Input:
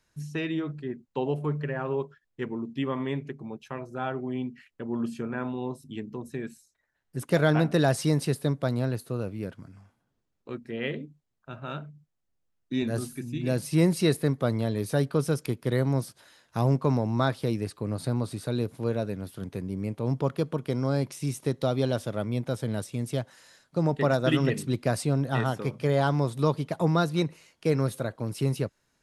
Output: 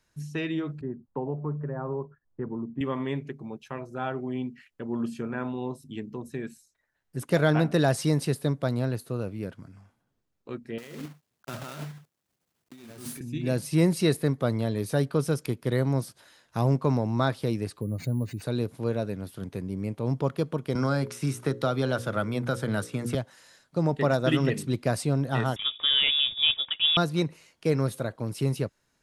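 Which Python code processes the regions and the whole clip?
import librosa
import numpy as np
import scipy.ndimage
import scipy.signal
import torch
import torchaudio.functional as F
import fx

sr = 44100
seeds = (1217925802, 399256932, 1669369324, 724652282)

y = fx.chain(x, sr, fx.lowpass(hz=1200.0, slope=24),
    fx.peak_eq(hz=500.0, db=-4.0, octaves=2.1),
    fx.band_squash(depth_pct=70), at=(0.81, 2.81))
y = fx.chain(y, sr, fx.block_float(bits=3),
    fx.highpass(hz=110.0, slope=12),
    fx.over_compress(threshold_db=-41.0, ratio=-1.0), at=(10.78, 13.21))
y = fx.chain(y, sr, fx.spec_expand(power=1.6),
    fx.resample_bad(factor=4, down='none', up='hold'), at=(17.81, 18.42))
y = fx.chain(y, sr, fx.peak_eq(hz=1400.0, db=10.0, octaves=0.59),
    fx.hum_notches(base_hz=60, count=9),
    fx.band_squash(depth_pct=70), at=(20.75, 23.15))
y = fx.chain(y, sr, fx.block_float(bits=5),
    fx.freq_invert(carrier_hz=3600), at=(25.56, 26.97))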